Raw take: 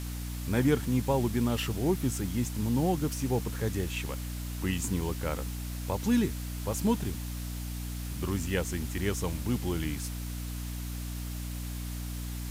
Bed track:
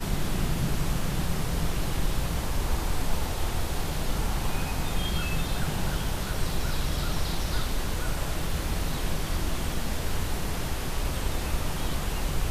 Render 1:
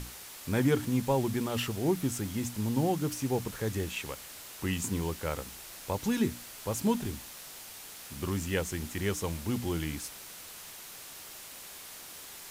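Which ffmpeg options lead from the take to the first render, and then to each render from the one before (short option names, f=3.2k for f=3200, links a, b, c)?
-af "bandreject=f=60:t=h:w=6,bandreject=f=120:t=h:w=6,bandreject=f=180:t=h:w=6,bandreject=f=240:t=h:w=6,bandreject=f=300:t=h:w=6"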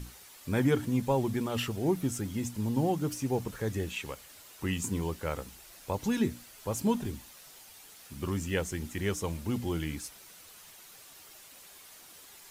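-af "afftdn=nr=8:nf=-47"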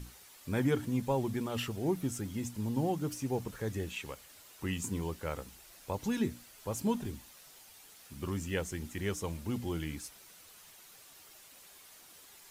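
-af "volume=-3.5dB"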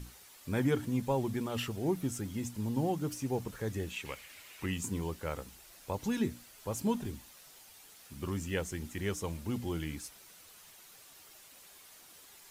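-filter_complex "[0:a]asettb=1/sr,asplit=3[a][b][c];[a]atrim=end=4.054[d];[b]atrim=start=4.05:end=4.66,asetpts=PTS-STARTPTS,afade=t=in:d=0.004:c=qsin,afade=t=out:st=0.606:d=0.004:c=qsin,equalizer=f=2.3k:w=1.5:g=12[e];[c]atrim=start=4.656[f];[d][e]acrossfade=d=0.004:c1=hsin:c2=qsin[g];[g][f]acrossfade=d=0.004:c1=qsin:c2=hsin"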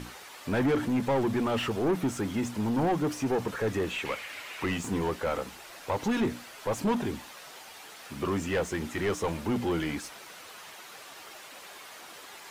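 -filter_complex "[0:a]asplit=2[a][b];[b]highpass=f=720:p=1,volume=26dB,asoftclip=type=tanh:threshold=-17.5dB[c];[a][c]amix=inputs=2:normalize=0,lowpass=f=1.3k:p=1,volume=-6dB"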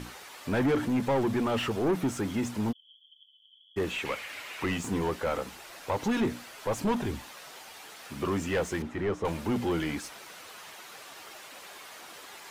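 -filter_complex "[0:a]asplit=3[a][b][c];[a]afade=t=out:st=2.71:d=0.02[d];[b]asuperpass=centerf=3200:order=12:qfactor=8,afade=t=in:st=2.71:d=0.02,afade=t=out:st=3.76:d=0.02[e];[c]afade=t=in:st=3.76:d=0.02[f];[d][e][f]amix=inputs=3:normalize=0,asettb=1/sr,asplit=3[g][h][i];[g]atrim=end=6.664[j];[h]atrim=start=6.66:end=7.23,asetpts=PTS-STARTPTS,afade=t=in:d=0.004:c=qsin,afade=t=out:st=0.566:d=0.004:c=qsin,asubboost=boost=11.5:cutoff=120[k];[i]atrim=start=7.226[l];[j][k]acrossfade=d=0.004:c1=hsin:c2=qsin[m];[m][l]acrossfade=d=0.004:c1=qsin:c2=hsin,asettb=1/sr,asplit=3[n][o][p];[n]atrim=end=8.824[q];[o]atrim=start=8.82:end=9.25,asetpts=PTS-STARTPTS,afade=t=in:d=0.004:c=qsin,afade=t=out:st=0.426:d=0.004:c=qsin,lowpass=f=1.2k:p=1[r];[p]atrim=start=9.246[s];[q][r]acrossfade=d=0.004:c1=hsin:c2=qsin[t];[t][s]acrossfade=d=0.004:c1=qsin:c2=hsin"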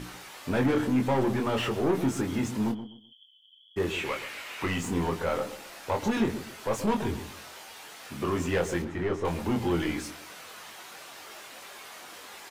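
-filter_complex "[0:a]asplit=2[a][b];[b]adelay=23,volume=-5dB[c];[a][c]amix=inputs=2:normalize=0,asplit=2[d][e];[e]adelay=127,lowpass=f=850:p=1,volume=-10dB,asplit=2[f][g];[g]adelay=127,lowpass=f=850:p=1,volume=0.29,asplit=2[h][i];[i]adelay=127,lowpass=f=850:p=1,volume=0.29[j];[d][f][h][j]amix=inputs=4:normalize=0"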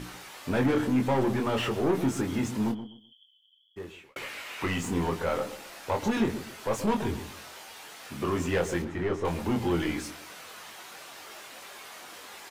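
-filter_complex "[0:a]asplit=2[a][b];[a]atrim=end=4.16,asetpts=PTS-STARTPTS,afade=t=out:st=2.83:d=1.33[c];[b]atrim=start=4.16,asetpts=PTS-STARTPTS,afade=t=in:d=0.004:c=hsin[d];[c][d]concat=n=2:v=0:a=1"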